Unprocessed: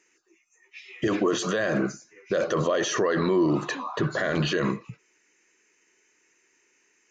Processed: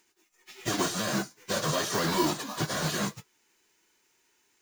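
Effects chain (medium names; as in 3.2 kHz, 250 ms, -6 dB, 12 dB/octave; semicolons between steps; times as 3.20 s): formants flattened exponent 0.3; plain phase-vocoder stretch 0.65×; dynamic bell 2.4 kHz, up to -7 dB, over -48 dBFS, Q 1.7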